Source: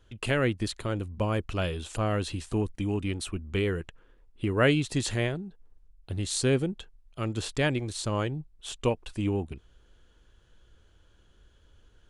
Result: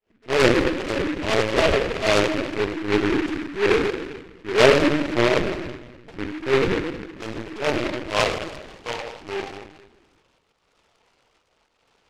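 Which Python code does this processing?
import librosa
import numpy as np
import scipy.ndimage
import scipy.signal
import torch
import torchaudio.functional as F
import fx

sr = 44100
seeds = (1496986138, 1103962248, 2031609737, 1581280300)

y = fx.fade_in_head(x, sr, length_s=0.53)
y = scipy.signal.sosfilt(scipy.signal.butter(12, 1400.0, 'lowpass', fs=sr, output='sos'), y)
y = fx.low_shelf(y, sr, hz=210.0, db=7.5)
y = fx.rider(y, sr, range_db=4, speed_s=0.5)
y = fx.auto_swell(y, sr, attack_ms=143.0)
y = fx.filter_sweep_highpass(y, sr, from_hz=380.0, to_hz=870.0, start_s=7.12, end_s=8.88, q=1.1)
y = fx.room_shoebox(y, sr, seeds[0], volume_m3=510.0, walls='mixed', distance_m=1.5)
y = fx.lpc_vocoder(y, sr, seeds[1], excitation='pitch_kept', order=16)
y = fx.noise_mod_delay(y, sr, seeds[2], noise_hz=1600.0, depth_ms=0.17)
y = y * librosa.db_to_amplitude(8.5)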